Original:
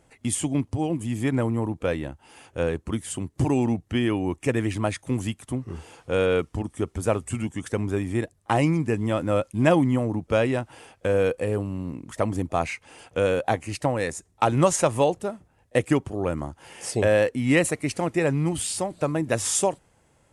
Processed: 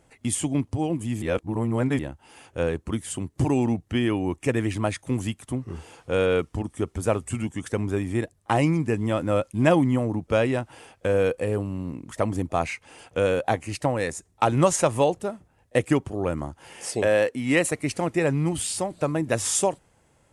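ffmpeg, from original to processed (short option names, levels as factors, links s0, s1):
-filter_complex "[0:a]asettb=1/sr,asplit=3[s0][s1][s2];[s0]atrim=end=16.834[s3];[s1]atrim=start=16.83:end=17.72,asetpts=PTS-STARTPTS,afade=t=in:d=0.004:c=qsin,afade=t=out:st=0.886:d=0.004:c=qsin,highpass=f=220:p=1[s4];[s2]atrim=start=17.716[s5];[s3][s4]acrossfade=d=0.004:c1=hsin:c2=qsin[s6];[s6][s5]acrossfade=d=0.004:c1=qsin:c2=hsin,asplit=3[s7][s8][s9];[s7]atrim=end=1.222[s10];[s8]atrim=start=1.218:end=1.992,asetpts=PTS-STARTPTS,areverse[s11];[s9]atrim=start=1.988[s12];[s10][s11]acrossfade=d=0.004:c1=hsin:c2=hsin[s13];[s13][s12]acrossfade=d=0.004:c1=hsin:c2=hsin"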